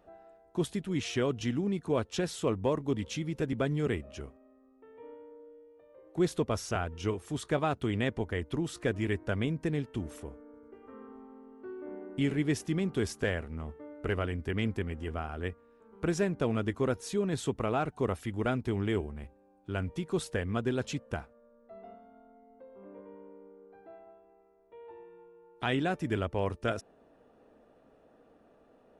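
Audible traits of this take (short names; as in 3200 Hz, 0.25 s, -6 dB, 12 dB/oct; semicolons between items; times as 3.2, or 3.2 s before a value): noise floor -63 dBFS; spectral tilt -6.0 dB/oct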